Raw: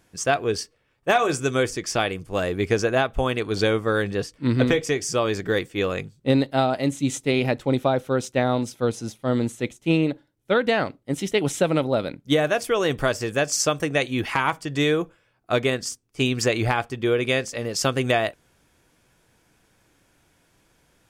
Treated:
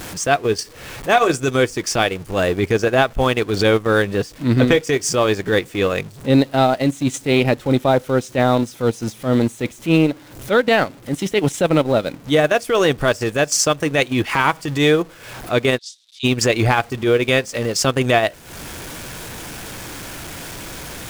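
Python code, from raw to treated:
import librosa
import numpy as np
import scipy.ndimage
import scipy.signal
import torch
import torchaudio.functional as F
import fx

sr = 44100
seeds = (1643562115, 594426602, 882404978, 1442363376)

y = x + 0.5 * 10.0 ** (-34.0 / 20.0) * np.sign(x)
y = fx.transient(y, sr, attack_db=-7, sustain_db=-11)
y = fx.ladder_bandpass(y, sr, hz=3900.0, resonance_pct=80, at=(15.77, 16.23), fade=0.02)
y = y * librosa.db_to_amplitude(7.0)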